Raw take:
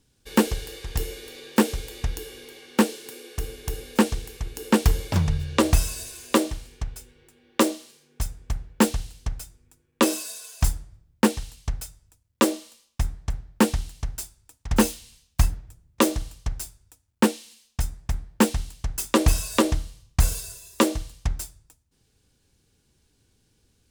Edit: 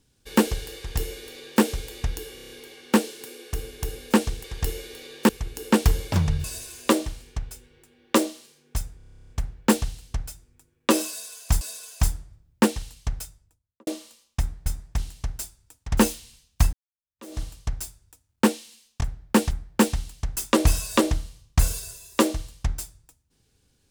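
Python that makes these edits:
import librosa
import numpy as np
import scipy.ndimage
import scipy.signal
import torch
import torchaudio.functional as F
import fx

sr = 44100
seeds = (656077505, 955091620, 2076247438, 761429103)

y = fx.studio_fade_out(x, sr, start_s=11.83, length_s=0.65)
y = fx.edit(y, sr, fx.duplicate(start_s=0.77, length_s=0.85, to_s=4.29),
    fx.stutter(start_s=2.35, slice_s=0.03, count=6),
    fx.cut(start_s=5.44, length_s=0.45),
    fx.stutter(start_s=8.42, slice_s=0.03, count=12),
    fx.repeat(start_s=10.22, length_s=0.51, count=2),
    fx.swap(start_s=13.27, length_s=0.5, other_s=17.8, other_length_s=0.32),
    fx.fade_in_span(start_s=15.52, length_s=0.67, curve='exp'), tone=tone)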